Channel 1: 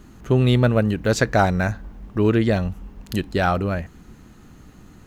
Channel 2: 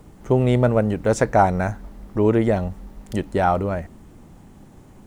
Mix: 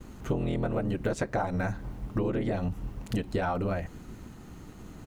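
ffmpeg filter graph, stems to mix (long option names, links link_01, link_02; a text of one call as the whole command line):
ffmpeg -i stem1.wav -i stem2.wav -filter_complex "[0:a]acrossover=split=3100[link_01][link_02];[link_02]acompressor=threshold=-42dB:ratio=4:attack=1:release=60[link_03];[link_01][link_03]amix=inputs=2:normalize=0,agate=range=-33dB:threshold=-44dB:ratio=3:detection=peak,acompressor=threshold=-19dB:ratio=6,volume=-0.5dB[link_04];[1:a]aeval=exprs='val(0)*sin(2*PI*82*n/s)':channel_layout=same,adelay=5.1,volume=-2dB[link_05];[link_04][link_05]amix=inputs=2:normalize=0,bandreject=frequency=1700:width=21,acompressor=threshold=-26dB:ratio=6" out.wav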